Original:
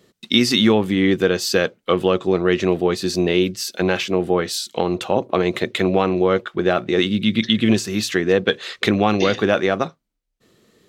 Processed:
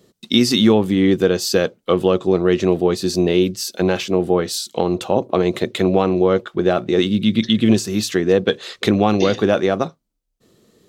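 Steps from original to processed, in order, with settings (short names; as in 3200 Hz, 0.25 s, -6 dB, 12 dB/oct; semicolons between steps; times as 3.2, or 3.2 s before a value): bell 2000 Hz -7 dB 1.7 oct; gain +2.5 dB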